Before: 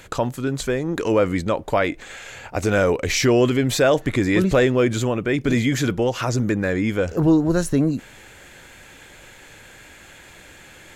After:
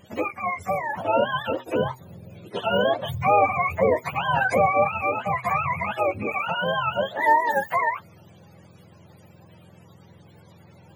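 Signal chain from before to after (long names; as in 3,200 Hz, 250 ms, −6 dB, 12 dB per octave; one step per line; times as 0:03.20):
frequency axis turned over on the octave scale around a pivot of 540 Hz
bass and treble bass −11 dB, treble −5 dB
hum removal 125.3 Hz, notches 3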